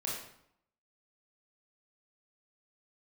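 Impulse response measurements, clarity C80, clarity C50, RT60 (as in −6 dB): 5.5 dB, 1.5 dB, 0.70 s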